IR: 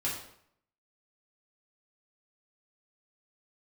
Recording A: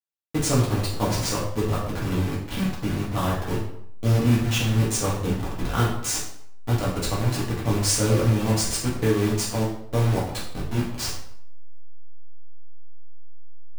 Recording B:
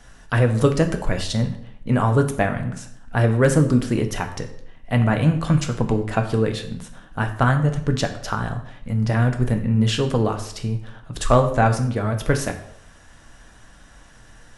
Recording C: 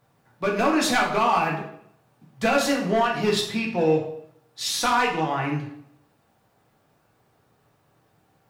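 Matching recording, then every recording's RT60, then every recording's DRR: A; 0.65, 0.65, 0.65 seconds; −7.0, 5.0, −2.5 decibels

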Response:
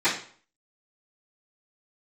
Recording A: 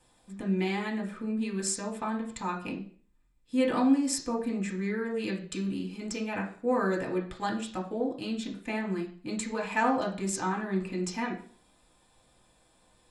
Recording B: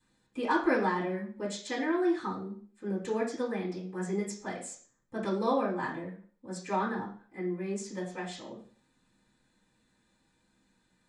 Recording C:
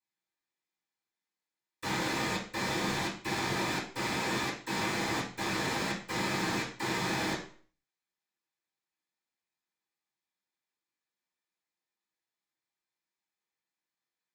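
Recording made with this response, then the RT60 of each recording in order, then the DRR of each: C; 0.50, 0.50, 0.50 seconds; −2.5, −11.5, −20.5 decibels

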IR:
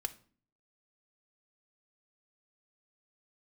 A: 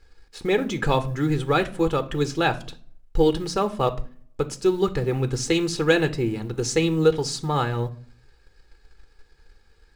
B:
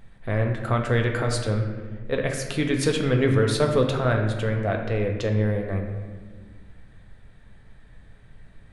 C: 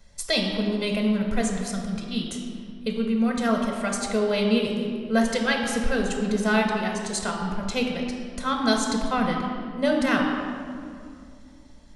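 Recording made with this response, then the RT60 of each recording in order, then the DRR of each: A; 0.45, 1.5, 2.4 seconds; 8.5, 2.5, 2.0 decibels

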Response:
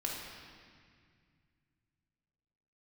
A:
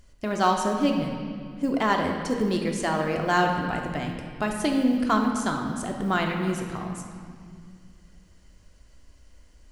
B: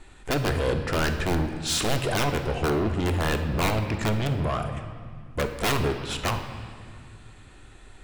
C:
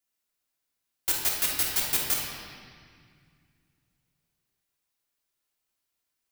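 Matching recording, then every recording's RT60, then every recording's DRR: C; 2.0, 2.1, 2.0 seconds; 1.5, 5.5, −3.5 decibels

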